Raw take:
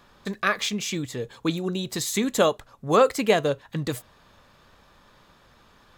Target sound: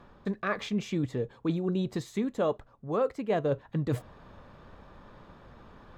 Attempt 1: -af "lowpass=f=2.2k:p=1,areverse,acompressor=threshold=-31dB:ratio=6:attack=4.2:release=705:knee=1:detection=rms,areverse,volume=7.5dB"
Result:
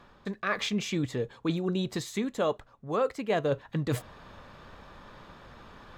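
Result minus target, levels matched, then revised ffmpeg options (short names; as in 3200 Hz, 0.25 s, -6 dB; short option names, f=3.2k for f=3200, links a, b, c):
2000 Hz band +3.5 dB
-af "lowpass=f=730:p=1,areverse,acompressor=threshold=-31dB:ratio=6:attack=4.2:release=705:knee=1:detection=rms,areverse,volume=7.5dB"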